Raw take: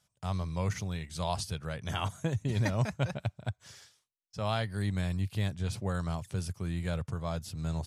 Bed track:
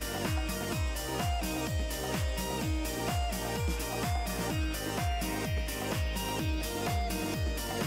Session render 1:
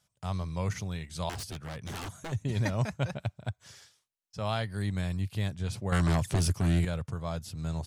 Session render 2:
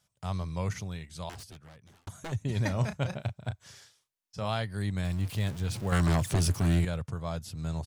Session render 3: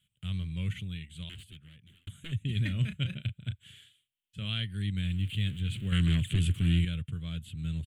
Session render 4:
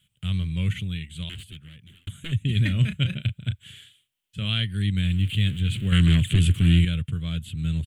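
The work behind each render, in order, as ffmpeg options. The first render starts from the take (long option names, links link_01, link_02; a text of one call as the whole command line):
ffmpeg -i in.wav -filter_complex "[0:a]asettb=1/sr,asplit=3[link_01][link_02][link_03];[link_01]atrim=end=1.294[link_04];[link_02]atrim=start=1.29:end=2.32,asetpts=PTS-STARTPTS,afade=type=in:duration=0.004:curve=qsin,afade=type=out:start_time=1.026:duration=0.004:curve=qsin,aeval=exprs='0.0224*(abs(mod(val(0)/0.0224+3,4)-2)-1)':channel_layout=same[link_05];[link_03]atrim=start=2.316[link_06];[link_04][link_05]acrossfade=duration=0.004:curve1=hsin:curve2=qsin[link_07];[link_07][link_06]acrossfade=duration=0.004:curve1=qsin:curve2=hsin,asettb=1/sr,asplit=3[link_08][link_09][link_10];[link_08]atrim=end=5.924[link_11];[link_09]atrim=start=5.92:end=6.85,asetpts=PTS-STARTPTS,afade=type=in:duration=0.004:curve=qsin,afade=type=out:start_time=0.926:duration=0.004:curve=qsin,aeval=exprs='0.0891*sin(PI/2*2.51*val(0)/0.0891)':channel_layout=same[link_12];[link_10]atrim=start=6.846[link_13];[link_11][link_12]acrossfade=duration=0.004:curve1=hsin:curve2=qsin[link_14];[link_14][link_13]acrossfade=duration=0.004:curve1=qsin:curve2=hsin" out.wav
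ffmpeg -i in.wav -filter_complex "[0:a]asplit=3[link_01][link_02][link_03];[link_01]afade=type=out:start_time=2.69:duration=0.02[link_04];[link_02]asplit=2[link_05][link_06];[link_06]adelay=33,volume=-9.5dB[link_07];[link_05][link_07]amix=inputs=2:normalize=0,afade=type=in:start_time=2.69:duration=0.02,afade=type=out:start_time=4.48:duration=0.02[link_08];[link_03]afade=type=in:start_time=4.48:duration=0.02[link_09];[link_04][link_08][link_09]amix=inputs=3:normalize=0,asettb=1/sr,asplit=3[link_10][link_11][link_12];[link_10]atrim=end=5.044[link_13];[link_11]atrim=start=5.04:end=6.84,asetpts=PTS-STARTPTS,afade=type=in:duration=0.004:curve=qsin,afade=type=out:start_time=1.796:duration=0.004:curve=qsin,aeval=exprs='val(0)+0.5*0.0112*sgn(val(0))':channel_layout=same[link_14];[link_12]atrim=start=6.836[link_15];[link_13][link_14]acrossfade=duration=0.004:curve1=hsin:curve2=qsin[link_16];[link_16][link_15]acrossfade=duration=0.004:curve1=qsin:curve2=hsin,asplit=2[link_17][link_18];[link_17]atrim=end=2.07,asetpts=PTS-STARTPTS,afade=type=out:start_time=0.58:duration=1.49[link_19];[link_18]atrim=start=2.07,asetpts=PTS-STARTPTS,afade=type=in:duration=0.004:curve=hsin[link_20];[link_19][link_20]concat=n=2:v=0:a=1" out.wav
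ffmpeg -i in.wav -filter_complex "[0:a]acrossover=split=9300[link_01][link_02];[link_02]acompressor=threshold=-60dB:ratio=4:attack=1:release=60[link_03];[link_01][link_03]amix=inputs=2:normalize=0,firequalizer=gain_entry='entry(180,0);entry(800,-30);entry(1400,-9);entry(3100,10);entry(5300,-28);entry(7600,-4)':delay=0.05:min_phase=1" out.wav
ffmpeg -i in.wav -af "volume=8dB" out.wav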